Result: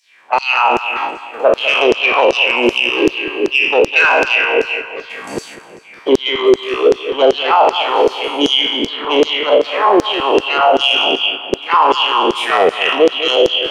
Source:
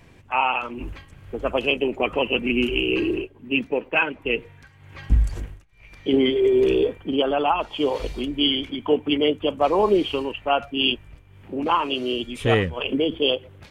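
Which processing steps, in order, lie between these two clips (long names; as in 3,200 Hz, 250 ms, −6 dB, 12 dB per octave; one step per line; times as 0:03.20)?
peak hold with a decay on every bin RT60 1.84 s
high-pass filter 150 Hz 24 dB per octave
spectral tilt −2.5 dB per octave
noise gate −31 dBFS, range −7 dB
downward compressor 1.5 to 1, threshold −26 dBFS, peak gain reduction 6.5 dB
soft clipping −14 dBFS, distortion −19 dB
auto-filter high-pass saw down 2.6 Hz 380–5,900 Hz
bucket-brigade delay 201 ms, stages 4,096, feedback 56%, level −15 dB
boost into a limiter +14 dB
level −1 dB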